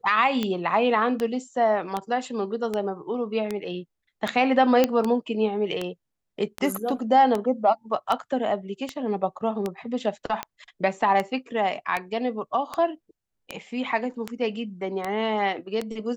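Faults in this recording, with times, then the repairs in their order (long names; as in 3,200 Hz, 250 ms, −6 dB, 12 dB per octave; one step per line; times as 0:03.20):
scratch tick 78 rpm −13 dBFS
0:04.84: click −6 dBFS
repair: click removal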